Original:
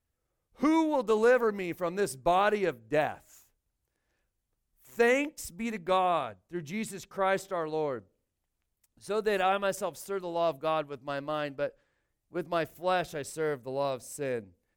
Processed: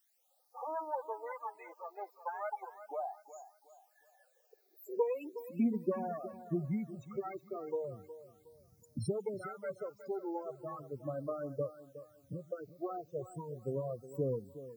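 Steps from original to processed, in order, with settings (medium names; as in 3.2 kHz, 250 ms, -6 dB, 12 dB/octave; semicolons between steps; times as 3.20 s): self-modulated delay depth 0.42 ms; recorder AGC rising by 10 dB/s; one-sided clip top -35.5 dBFS; transient shaper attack +6 dB, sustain -8 dB; compression 2:1, threshold -48 dBFS, peak gain reduction 15.5 dB; high-pass sweep 780 Hz -> 120 Hz, 3.82–6.80 s; loudest bins only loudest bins 8; added noise blue -79 dBFS; phase shifter stages 12, 0.37 Hz, lowest notch 160–3200 Hz; on a send: thinning echo 365 ms, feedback 34%, high-pass 170 Hz, level -13 dB; on the sum: trim +6 dB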